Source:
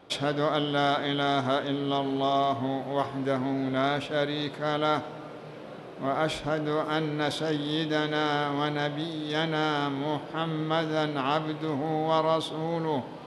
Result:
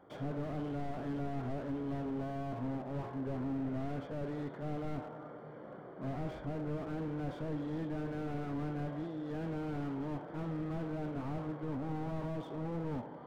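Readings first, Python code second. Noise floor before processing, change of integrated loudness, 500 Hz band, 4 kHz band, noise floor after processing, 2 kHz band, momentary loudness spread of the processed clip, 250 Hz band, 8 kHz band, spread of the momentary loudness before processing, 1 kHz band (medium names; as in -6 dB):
-42 dBFS, -11.5 dB, -14.0 dB, -27.5 dB, -49 dBFS, -18.5 dB, 3 LU, -7.5 dB, under -20 dB, 6 LU, -16.5 dB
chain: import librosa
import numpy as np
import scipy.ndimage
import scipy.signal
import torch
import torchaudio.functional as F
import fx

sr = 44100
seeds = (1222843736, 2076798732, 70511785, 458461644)

y = scipy.signal.savgol_filter(x, 41, 4, mode='constant')
y = fx.slew_limit(y, sr, full_power_hz=12.0)
y = y * 10.0 ** (-6.5 / 20.0)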